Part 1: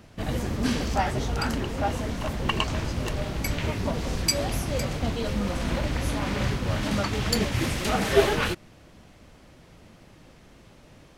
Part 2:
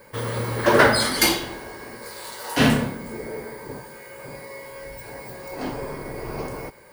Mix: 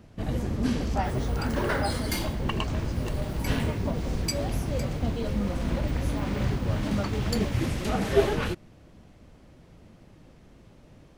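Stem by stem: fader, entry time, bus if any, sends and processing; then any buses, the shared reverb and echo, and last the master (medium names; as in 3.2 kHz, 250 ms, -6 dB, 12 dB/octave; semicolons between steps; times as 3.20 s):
-3.5 dB, 0.00 s, no send, tilt shelf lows +4 dB, about 690 Hz
-14.0 dB, 0.90 s, no send, none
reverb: none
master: none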